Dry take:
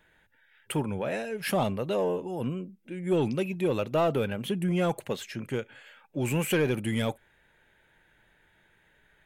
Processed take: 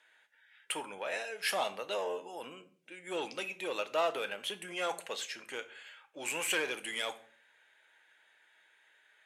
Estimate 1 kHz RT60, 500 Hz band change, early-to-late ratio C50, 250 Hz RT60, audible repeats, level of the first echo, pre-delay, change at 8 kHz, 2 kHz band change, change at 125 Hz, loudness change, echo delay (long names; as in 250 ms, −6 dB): 0.45 s, −8.5 dB, 16.0 dB, 0.65 s, no echo audible, no echo audible, 6 ms, +1.0 dB, 0.0 dB, −30.0 dB, −6.5 dB, no echo audible